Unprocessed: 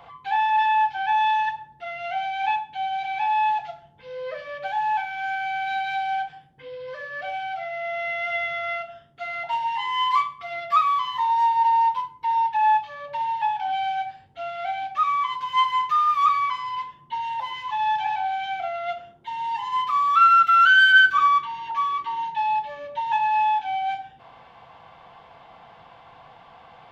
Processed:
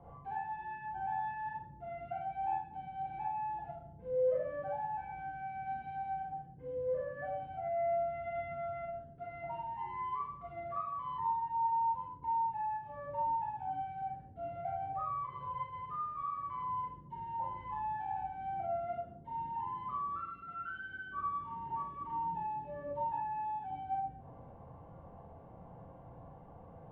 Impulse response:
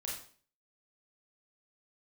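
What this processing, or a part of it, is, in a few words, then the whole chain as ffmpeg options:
television next door: -filter_complex "[0:a]asettb=1/sr,asplit=3[link_01][link_02][link_03];[link_01]atrim=end=14.524[link_04];[link_02]atrim=start=14.52:end=15.79,asetpts=PTS-STARTPTS,afade=type=in:duration=0.004:curve=qsin,afade=type=out:start_time=1.266:duration=0.004:curve=qsin,equalizer=frequency=125:width_type=o:width=1:gain=8,equalizer=frequency=250:width_type=o:width=1:gain=-10,equalizer=frequency=500:width_type=o:width=1:gain=8[link_05];[link_03]atrim=start=15.786[link_06];[link_04][link_05]acrossfade=duration=0.004:curve1=hsin:curve2=qsin[link_07];[link_07][link_06]acrossfade=duration=0.004:curve1=qsin:curve2=hsin,acompressor=threshold=-23dB:ratio=4,lowpass=360[link_08];[1:a]atrim=start_sample=2205[link_09];[link_08][link_09]afir=irnorm=-1:irlink=0,volume=6.5dB"

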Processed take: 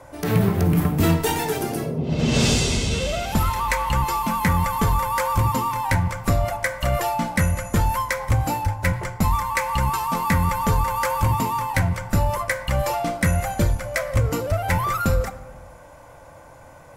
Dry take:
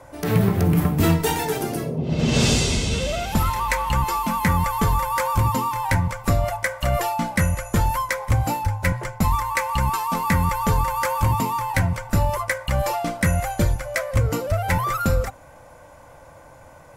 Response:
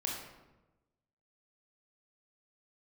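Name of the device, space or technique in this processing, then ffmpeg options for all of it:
saturated reverb return: -filter_complex "[0:a]asplit=2[link_01][link_02];[1:a]atrim=start_sample=2205[link_03];[link_02][link_03]afir=irnorm=-1:irlink=0,asoftclip=type=tanh:threshold=-17.5dB,volume=-10.5dB[link_04];[link_01][link_04]amix=inputs=2:normalize=0,volume=-1.5dB"

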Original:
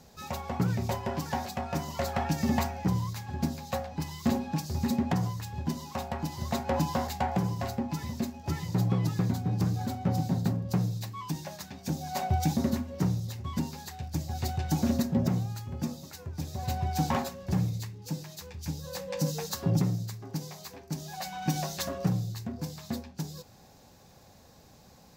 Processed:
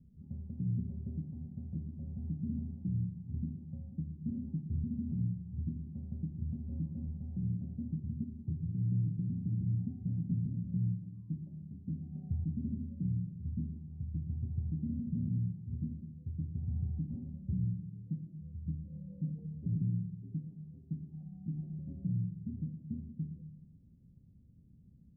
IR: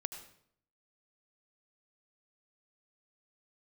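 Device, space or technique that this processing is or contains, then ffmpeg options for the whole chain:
club heard from the street: -filter_complex "[0:a]alimiter=limit=-23.5dB:level=0:latency=1:release=126,lowpass=frequency=230:width=0.5412,lowpass=frequency=230:width=1.3066[link_01];[1:a]atrim=start_sample=2205[link_02];[link_01][link_02]afir=irnorm=-1:irlink=0"

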